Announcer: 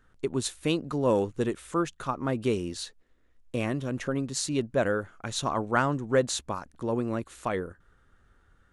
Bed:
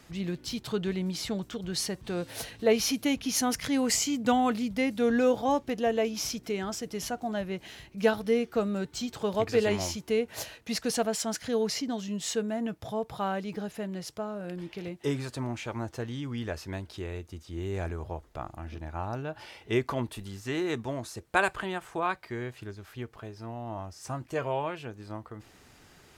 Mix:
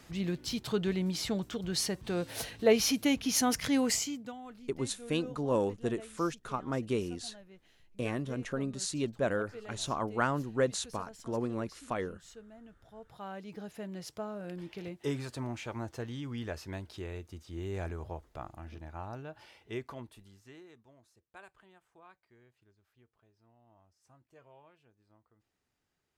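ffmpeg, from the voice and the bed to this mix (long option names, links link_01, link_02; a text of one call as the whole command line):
ffmpeg -i stem1.wav -i stem2.wav -filter_complex "[0:a]adelay=4450,volume=-5dB[link_01];[1:a]volume=17dB,afade=type=out:start_time=3.75:duration=0.57:silence=0.0891251,afade=type=in:start_time=12.9:duration=1.28:silence=0.133352,afade=type=out:start_time=18.08:duration=2.67:silence=0.0668344[link_02];[link_01][link_02]amix=inputs=2:normalize=0" out.wav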